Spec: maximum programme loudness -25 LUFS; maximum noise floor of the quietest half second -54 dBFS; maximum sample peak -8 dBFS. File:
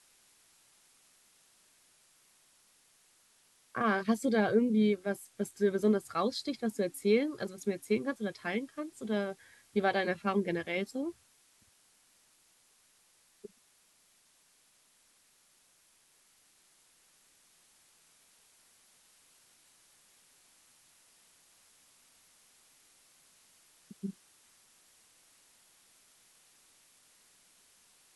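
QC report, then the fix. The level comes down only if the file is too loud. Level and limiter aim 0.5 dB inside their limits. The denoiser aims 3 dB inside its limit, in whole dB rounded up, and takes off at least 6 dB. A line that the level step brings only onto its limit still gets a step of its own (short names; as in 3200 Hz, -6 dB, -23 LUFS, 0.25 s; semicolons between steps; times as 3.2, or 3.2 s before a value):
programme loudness -32.5 LUFS: OK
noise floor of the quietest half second -68 dBFS: OK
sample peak -15.5 dBFS: OK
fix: none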